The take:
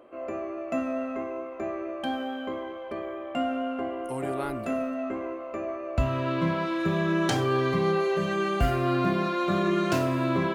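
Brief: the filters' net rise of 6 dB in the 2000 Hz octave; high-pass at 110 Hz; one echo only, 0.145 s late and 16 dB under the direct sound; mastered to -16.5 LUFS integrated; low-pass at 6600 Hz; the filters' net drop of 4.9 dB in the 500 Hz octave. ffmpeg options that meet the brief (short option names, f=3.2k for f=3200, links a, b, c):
-af "highpass=110,lowpass=6.6k,equalizer=f=500:t=o:g=-8,equalizer=f=2k:t=o:g=8.5,aecho=1:1:145:0.158,volume=12.5dB"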